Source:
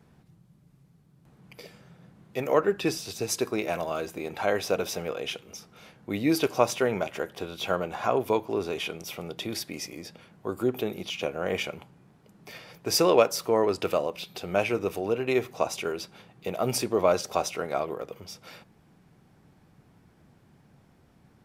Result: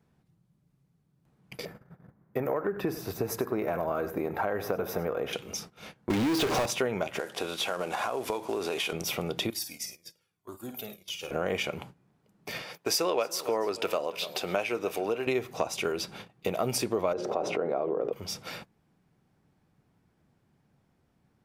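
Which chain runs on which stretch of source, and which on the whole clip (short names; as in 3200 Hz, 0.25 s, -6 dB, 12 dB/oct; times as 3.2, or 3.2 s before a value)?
1.65–5.33 band shelf 4900 Hz -15.5 dB 2.3 oct + compressor 3:1, threshold -26 dBFS + echo 97 ms -15 dB
6.1–6.66 compressor 3:1, threshold -30 dBFS + running mean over 5 samples + power-law curve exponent 0.35
7.19–8.93 CVSD 64 kbps + HPF 400 Hz 6 dB/oct + compressor, threshold -31 dBFS
9.5–11.31 pre-emphasis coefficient 0.8 + flutter echo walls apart 9 m, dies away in 0.38 s + cascading flanger falling 1 Hz
12.62–15.27 HPF 440 Hz 6 dB/oct + feedback echo 0.288 s, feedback 32%, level -20.5 dB
17.13–18.13 band-pass 410 Hz, Q 1.1 + notches 60/120/180/240/300/360/420 Hz + fast leveller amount 70%
whole clip: gate -50 dBFS, range -17 dB; compressor 4:1, threshold -34 dBFS; gain +7 dB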